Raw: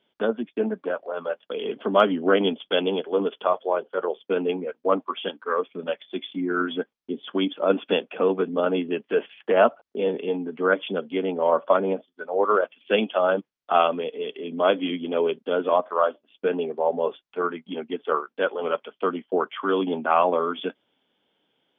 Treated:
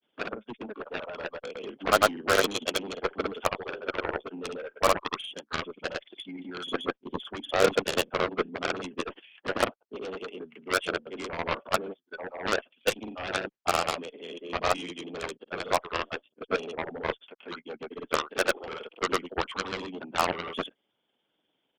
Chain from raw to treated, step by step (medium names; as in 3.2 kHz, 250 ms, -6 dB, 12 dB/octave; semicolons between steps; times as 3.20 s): harmonic-percussive split harmonic -13 dB; granulator 100 ms, grains 20 per s; Chebyshev shaper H 3 -17 dB, 5 -22 dB, 6 -36 dB, 7 -11 dB, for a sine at -13 dBFS